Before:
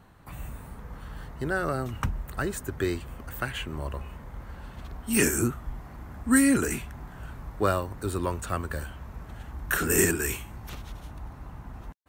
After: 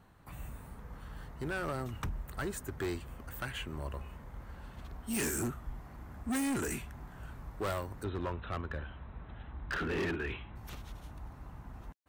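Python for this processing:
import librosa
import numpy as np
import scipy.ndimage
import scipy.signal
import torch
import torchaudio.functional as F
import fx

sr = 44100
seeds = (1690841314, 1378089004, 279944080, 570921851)

y = fx.brickwall_lowpass(x, sr, high_hz=4100.0, at=(8.03, 10.55), fade=0.02)
y = np.clip(y, -10.0 ** (-24.5 / 20.0), 10.0 ** (-24.5 / 20.0))
y = F.gain(torch.from_numpy(y), -6.0).numpy()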